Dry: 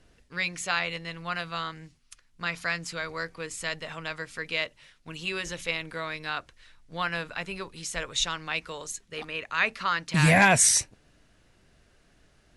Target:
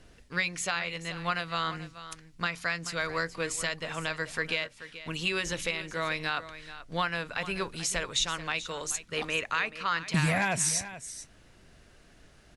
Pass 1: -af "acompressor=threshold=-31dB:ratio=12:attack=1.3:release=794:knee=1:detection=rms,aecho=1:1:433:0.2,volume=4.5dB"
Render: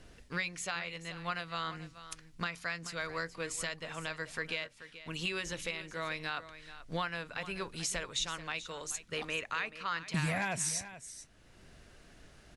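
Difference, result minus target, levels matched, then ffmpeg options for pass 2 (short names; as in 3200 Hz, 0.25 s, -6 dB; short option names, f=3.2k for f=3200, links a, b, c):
compressor: peak gain reduction +6.5 dB
-af "acompressor=threshold=-24dB:ratio=12:attack=1.3:release=794:knee=1:detection=rms,aecho=1:1:433:0.2,volume=4.5dB"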